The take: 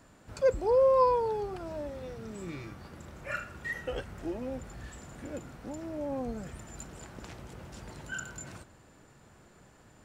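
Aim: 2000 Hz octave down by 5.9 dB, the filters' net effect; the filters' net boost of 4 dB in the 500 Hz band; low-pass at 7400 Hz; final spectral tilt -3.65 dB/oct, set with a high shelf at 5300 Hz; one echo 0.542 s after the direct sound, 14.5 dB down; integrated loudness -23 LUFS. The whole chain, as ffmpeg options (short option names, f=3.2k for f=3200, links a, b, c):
-af "lowpass=7.4k,equalizer=f=500:t=o:g=4.5,equalizer=f=2k:t=o:g=-7.5,highshelf=f=5.3k:g=-6.5,aecho=1:1:542:0.188,volume=5dB"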